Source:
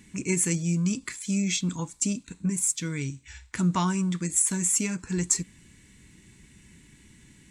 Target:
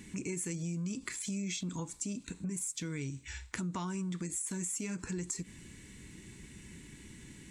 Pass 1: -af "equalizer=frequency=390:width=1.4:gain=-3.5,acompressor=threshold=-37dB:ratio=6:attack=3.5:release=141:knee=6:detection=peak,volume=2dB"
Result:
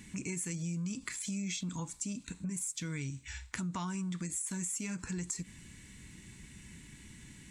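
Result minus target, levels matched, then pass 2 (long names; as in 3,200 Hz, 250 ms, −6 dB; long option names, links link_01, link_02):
500 Hz band −5.0 dB
-af "equalizer=frequency=390:width=1.4:gain=4,acompressor=threshold=-37dB:ratio=6:attack=3.5:release=141:knee=6:detection=peak,volume=2dB"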